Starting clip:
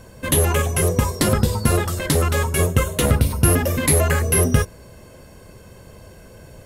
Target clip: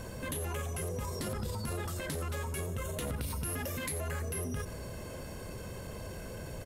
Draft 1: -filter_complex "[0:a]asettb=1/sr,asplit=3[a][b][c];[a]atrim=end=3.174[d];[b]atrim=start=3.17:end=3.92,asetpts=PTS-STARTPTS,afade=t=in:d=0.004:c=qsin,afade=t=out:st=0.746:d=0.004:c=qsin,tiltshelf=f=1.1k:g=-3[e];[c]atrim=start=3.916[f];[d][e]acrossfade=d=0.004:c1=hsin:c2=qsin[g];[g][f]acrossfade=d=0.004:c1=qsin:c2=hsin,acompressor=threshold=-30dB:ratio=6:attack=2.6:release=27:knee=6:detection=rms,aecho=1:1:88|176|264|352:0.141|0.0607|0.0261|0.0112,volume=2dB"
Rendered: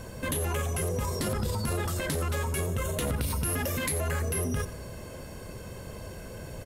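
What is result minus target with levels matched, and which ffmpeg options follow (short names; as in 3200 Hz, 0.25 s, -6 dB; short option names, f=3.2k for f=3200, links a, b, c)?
compressor: peak gain reduction -6.5 dB
-filter_complex "[0:a]asettb=1/sr,asplit=3[a][b][c];[a]atrim=end=3.174[d];[b]atrim=start=3.17:end=3.92,asetpts=PTS-STARTPTS,afade=t=in:d=0.004:c=qsin,afade=t=out:st=0.746:d=0.004:c=qsin,tiltshelf=f=1.1k:g=-3[e];[c]atrim=start=3.916[f];[d][e]acrossfade=d=0.004:c1=hsin:c2=qsin[g];[g][f]acrossfade=d=0.004:c1=qsin:c2=hsin,acompressor=threshold=-38dB:ratio=6:attack=2.6:release=27:knee=6:detection=rms,aecho=1:1:88|176|264|352:0.141|0.0607|0.0261|0.0112,volume=2dB"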